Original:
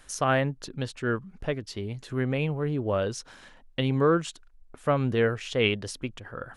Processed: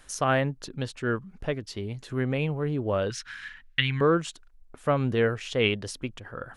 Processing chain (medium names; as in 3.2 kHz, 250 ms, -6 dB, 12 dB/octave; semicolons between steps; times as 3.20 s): 3.10–4.01 s: FFT filter 120 Hz 0 dB, 620 Hz -21 dB, 1.7 kHz +14 dB, 7.6 kHz -2 dB